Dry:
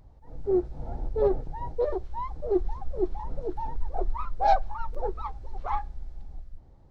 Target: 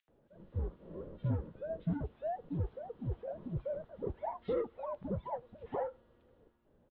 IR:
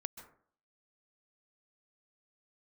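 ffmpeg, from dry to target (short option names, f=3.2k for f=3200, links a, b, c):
-filter_complex "[0:a]highpass=f=330:t=q:w=0.5412,highpass=f=330:t=q:w=1.307,lowpass=f=3.5k:t=q:w=0.5176,lowpass=f=3.5k:t=q:w=0.7071,lowpass=f=3.5k:t=q:w=1.932,afreqshift=-310,acrossover=split=110|1100[a][b][c];[a]acompressor=threshold=-40dB:ratio=4[d];[b]acompressor=threshold=-33dB:ratio=4[e];[c]acompressor=threshold=-47dB:ratio=4[f];[d][e][f]amix=inputs=3:normalize=0,acrossover=split=2200[g][h];[g]adelay=80[i];[i][h]amix=inputs=2:normalize=0,volume=-1dB"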